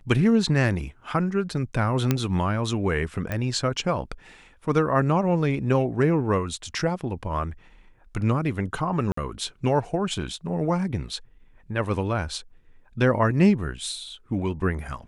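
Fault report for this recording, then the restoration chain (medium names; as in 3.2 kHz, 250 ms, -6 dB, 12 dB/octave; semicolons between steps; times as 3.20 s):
2.11 s: pop -7 dBFS
3.32 s: pop -15 dBFS
9.12–9.17 s: dropout 54 ms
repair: de-click; interpolate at 9.12 s, 54 ms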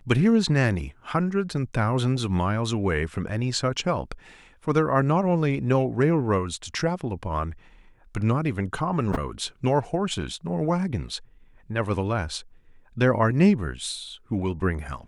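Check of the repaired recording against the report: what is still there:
nothing left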